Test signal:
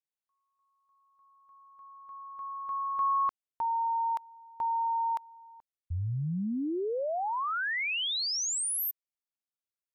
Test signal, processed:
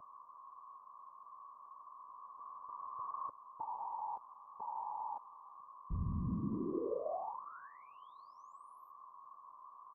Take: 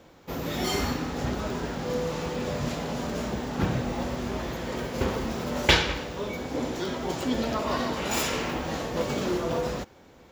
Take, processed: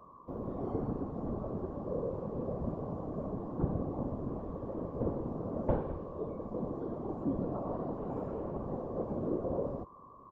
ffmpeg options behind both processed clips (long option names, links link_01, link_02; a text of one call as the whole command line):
ffmpeg -i in.wav -filter_complex "[0:a]aeval=exprs='val(0)+0.0158*sin(2*PI*1100*n/s)':channel_layout=same,afftfilt=real='hypot(re,im)*cos(2*PI*random(0))':imag='hypot(re,im)*sin(2*PI*random(1))':win_size=512:overlap=0.75,acrossover=split=560|2000[link_01][link_02][link_03];[link_03]acompressor=threshold=-51dB:ratio=8:attack=0.37:release=77:knee=6:detection=rms[link_04];[link_01][link_02][link_04]amix=inputs=3:normalize=0,firequalizer=gain_entry='entry(560,0);entry(1300,-15);entry(2000,-28)':delay=0.05:min_phase=1" out.wav